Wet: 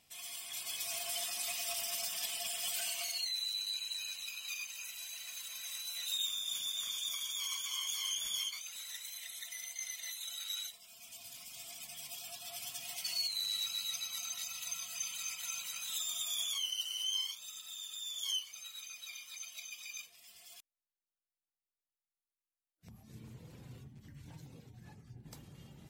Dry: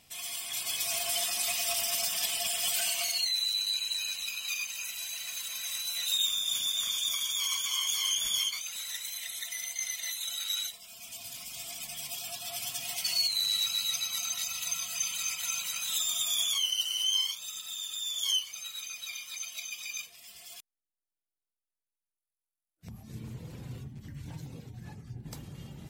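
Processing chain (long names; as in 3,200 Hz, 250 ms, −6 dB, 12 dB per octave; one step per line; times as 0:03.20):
low-shelf EQ 200 Hz −3.5 dB
level −7.5 dB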